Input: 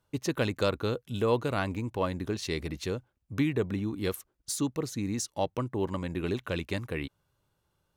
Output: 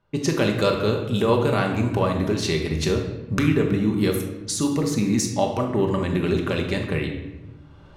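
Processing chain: recorder AGC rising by 21 dB/s; simulated room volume 600 m³, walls mixed, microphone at 1.2 m; level-controlled noise filter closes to 2.8 kHz, open at -23.5 dBFS; trim +5 dB

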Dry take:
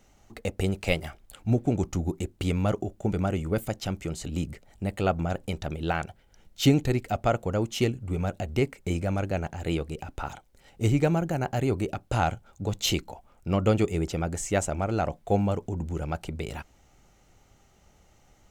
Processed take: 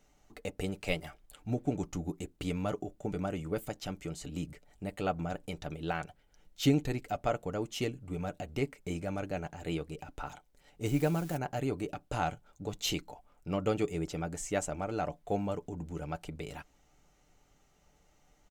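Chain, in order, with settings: 10.86–11.37 s: zero-crossing glitches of -27.5 dBFS; peaking EQ 110 Hz -6.5 dB 0.57 oct; comb 6.8 ms, depth 38%; trim -7 dB

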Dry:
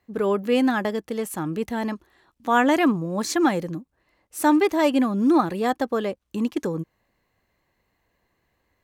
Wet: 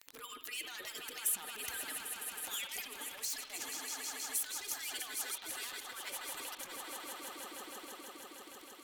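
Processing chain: harmonic-percussive separation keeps percussive; echo with a slow build-up 159 ms, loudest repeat 5, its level -15 dB; Chebyshev shaper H 3 -17 dB, 7 -15 dB, 8 -35 dB, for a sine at -8.5 dBFS; compressor with a negative ratio -41 dBFS, ratio -1; pre-emphasis filter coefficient 0.9; crackle 30 per s -47 dBFS; on a send at -10 dB: resonant high shelf 2.6 kHz +10.5 dB, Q 1.5 + reverberation, pre-delay 50 ms; on the sum: tape noise reduction on one side only encoder only; trim +6.5 dB

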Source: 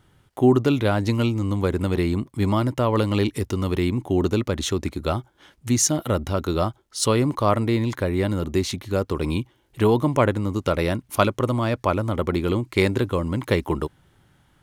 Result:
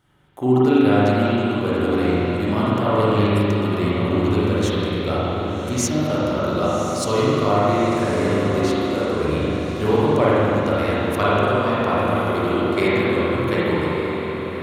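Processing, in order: bass shelf 150 Hz -7.5 dB; echo that smears into a reverb 1154 ms, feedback 42%, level -8.5 dB; spring tank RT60 3 s, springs 39/46 ms, chirp 40 ms, DRR -9 dB; trim -5 dB

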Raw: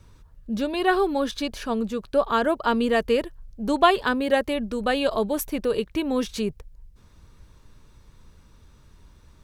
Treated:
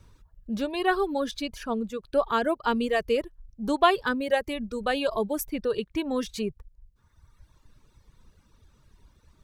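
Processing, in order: reverb removal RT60 1.6 s; trim -2.5 dB

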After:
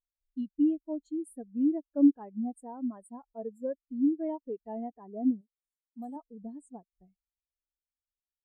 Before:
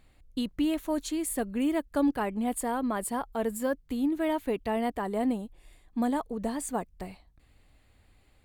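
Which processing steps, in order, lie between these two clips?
5.41–6.16 s: tone controls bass -11 dB, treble +14 dB; in parallel at -3 dB: compression, threshold -41 dBFS, peak gain reduction 17.5 dB; on the sum: treble shelf 2.3 kHz +5 dB; spectral contrast expander 2.5:1; trim +1.5 dB

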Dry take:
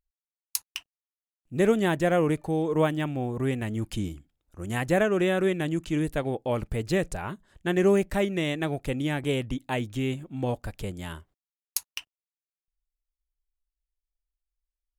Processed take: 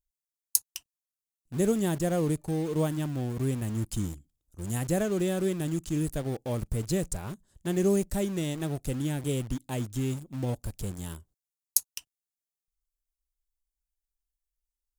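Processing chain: FFT filter 130 Hz 0 dB, 2.2 kHz -14 dB, 7 kHz +5 dB; in parallel at -8 dB: word length cut 6-bit, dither none; on the sum: trim -2 dB

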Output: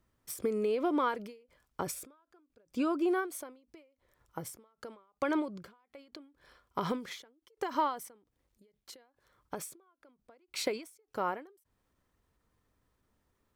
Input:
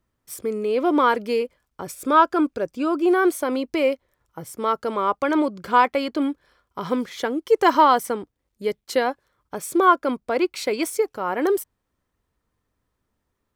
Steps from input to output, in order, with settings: compression 4:1, threshold -29 dBFS, peak gain reduction 15.5 dB; endings held to a fixed fall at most 130 dB/s

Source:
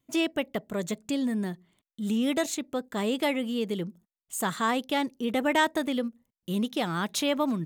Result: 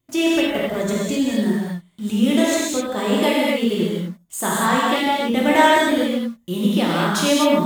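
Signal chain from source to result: bass shelf 68 Hz +5.5 dB; in parallel at -8 dB: bit crusher 7-bit; on the sum: gated-style reverb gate 280 ms flat, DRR -6 dB

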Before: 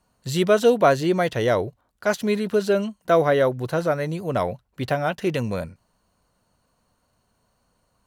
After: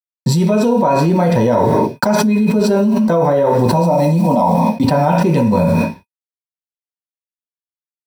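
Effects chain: 3.73–4.84 s: static phaser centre 410 Hz, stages 6; gate with hold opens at -32 dBFS; bit crusher 8-bit; small resonant body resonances 940/2500 Hz, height 18 dB, ringing for 80 ms; reverberation RT60 0.45 s, pre-delay 3 ms, DRR -3 dB; level flattener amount 100%; trim -15.5 dB

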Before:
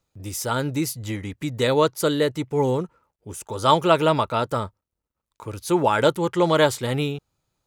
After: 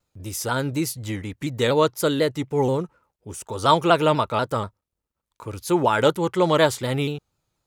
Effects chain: vibrato with a chosen wave saw down 4.1 Hz, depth 100 cents

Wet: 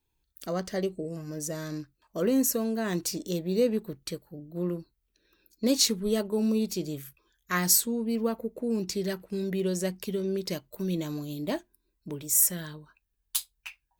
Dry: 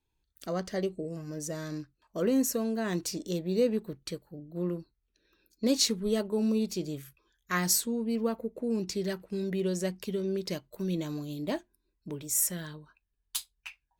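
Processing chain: treble shelf 12 kHz +10.5 dB; trim +1.5 dB

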